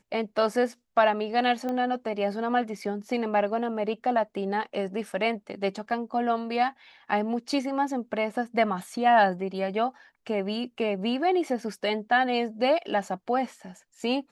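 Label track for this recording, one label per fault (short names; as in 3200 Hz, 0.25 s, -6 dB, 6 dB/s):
1.690000	1.690000	pop -20 dBFS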